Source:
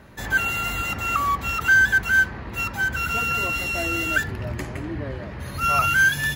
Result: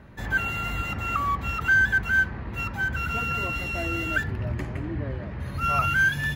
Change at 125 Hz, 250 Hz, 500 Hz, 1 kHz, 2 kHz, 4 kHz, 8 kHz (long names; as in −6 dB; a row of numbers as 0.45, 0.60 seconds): +1.0, −1.0, −3.0, −3.5, −4.0, −6.0, −11.5 decibels